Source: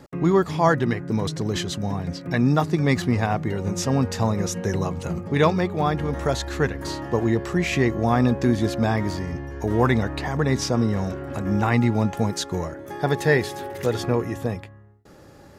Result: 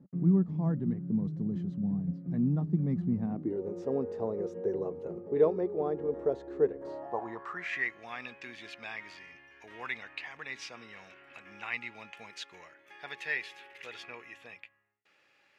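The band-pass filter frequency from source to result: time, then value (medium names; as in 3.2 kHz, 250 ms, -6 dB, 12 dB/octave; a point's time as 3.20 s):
band-pass filter, Q 4.2
3.20 s 190 Hz
3.66 s 430 Hz
6.74 s 430 Hz
7.99 s 2.5 kHz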